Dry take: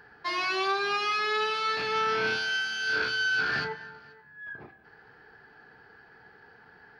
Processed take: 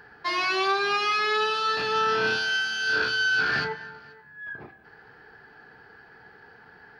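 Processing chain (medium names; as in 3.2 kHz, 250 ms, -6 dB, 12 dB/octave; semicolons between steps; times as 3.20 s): 1.34–3.41 s: band-stop 2.2 kHz, Q 7; trim +3.5 dB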